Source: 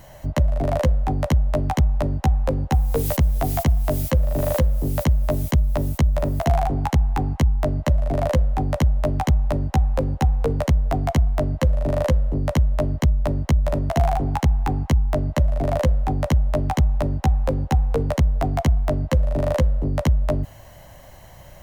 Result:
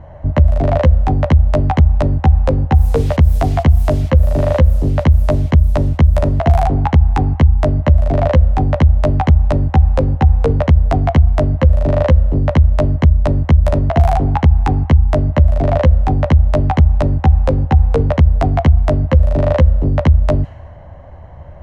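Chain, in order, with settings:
parametric band 78 Hz +14 dB 0.29 octaves
low-pass that shuts in the quiet parts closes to 1,100 Hz, open at −8.5 dBFS
boost into a limiter +8 dB
level −1 dB

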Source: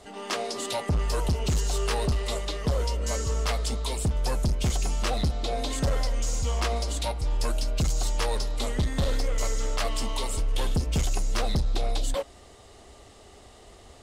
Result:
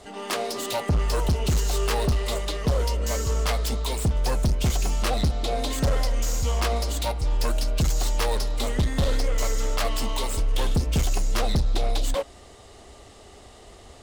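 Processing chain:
phase distortion by the signal itself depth 0.054 ms
level +3 dB

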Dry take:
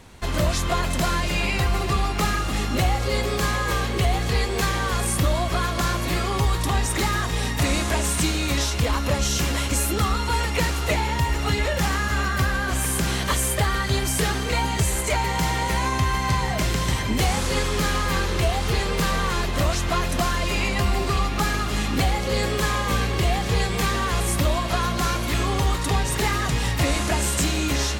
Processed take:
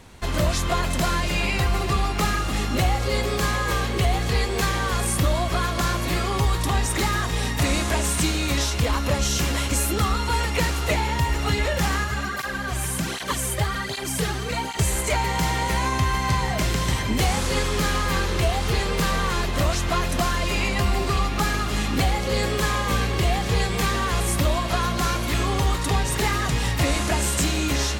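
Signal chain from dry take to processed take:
0:12.04–0:14.79: through-zero flanger with one copy inverted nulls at 1.3 Hz, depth 4.6 ms

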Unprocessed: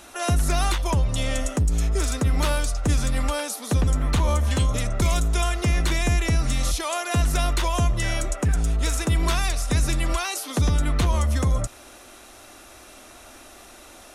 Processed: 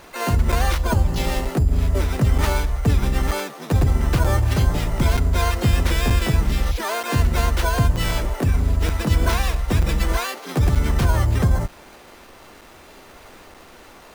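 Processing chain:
bad sample-rate conversion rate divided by 6×, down filtered, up hold
pitch-shifted copies added −7 semitones −4 dB, +7 semitones −2 dB
regular buffer underruns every 0.93 s, samples 256, zero, from 0:00.52

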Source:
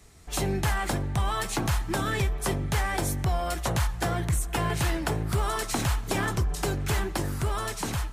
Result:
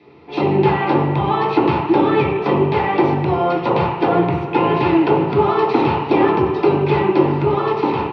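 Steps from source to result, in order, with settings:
loudspeaker in its box 240–3,200 Hz, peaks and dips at 240 Hz −3 dB, 360 Hz +10 dB, 630 Hz −4 dB, 920 Hz +8 dB, 1,600 Hz −5 dB, 2,700 Hz +10 dB
single-tap delay 354 ms −17 dB
convolution reverb RT60 1.0 s, pre-delay 3 ms, DRR −5 dB
level −2 dB

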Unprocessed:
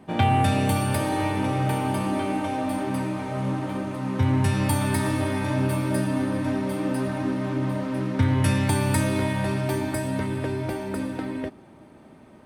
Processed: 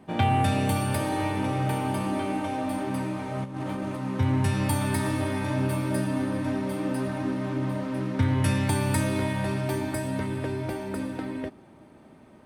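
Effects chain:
0:03.44–0:03.97: compressor whose output falls as the input rises −29 dBFS, ratio −0.5
level −2.5 dB

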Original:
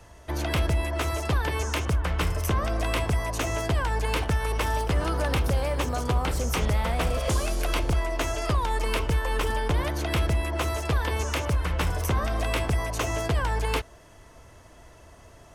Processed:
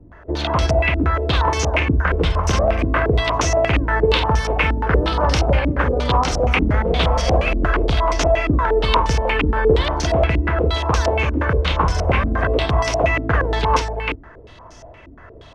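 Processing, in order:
multi-tap delay 50/339 ms −9.5/−5 dB
low-pass on a step sequencer 8.5 Hz 290–5,700 Hz
level +5 dB

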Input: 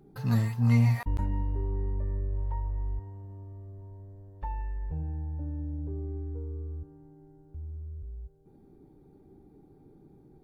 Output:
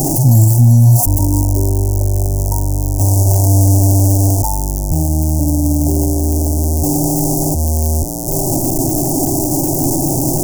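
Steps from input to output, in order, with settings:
converter with a step at zero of −32 dBFS
inverse Chebyshev band-stop filter 1,400–3,500 Hz, stop band 50 dB
high-shelf EQ 3,000 Hz +12 dB
in parallel at +1 dB: compressor whose output falls as the input rises −35 dBFS, ratio −0.5
on the sum: phaser with its sweep stopped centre 300 Hz, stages 8
boost into a limiter +21 dB
level −1 dB

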